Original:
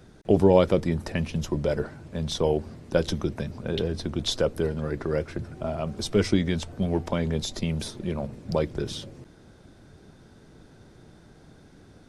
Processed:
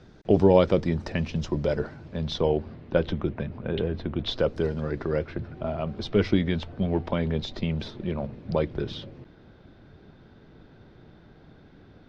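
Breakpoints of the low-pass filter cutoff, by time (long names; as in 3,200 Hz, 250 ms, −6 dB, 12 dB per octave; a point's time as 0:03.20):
low-pass filter 24 dB per octave
0:01.86 5,700 Hz
0:03.15 3,100 Hz
0:04.17 3,100 Hz
0:04.66 6,500 Hz
0:05.34 4,000 Hz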